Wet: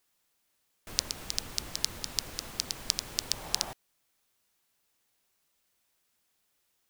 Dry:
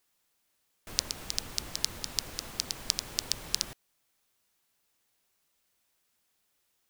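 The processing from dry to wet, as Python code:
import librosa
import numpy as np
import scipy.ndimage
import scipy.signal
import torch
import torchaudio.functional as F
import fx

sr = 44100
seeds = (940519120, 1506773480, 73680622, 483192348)

y = fx.peak_eq(x, sr, hz=780.0, db=fx.line((3.31, 4.5), (3.71, 14.5)), octaves=1.0, at=(3.31, 3.71), fade=0.02)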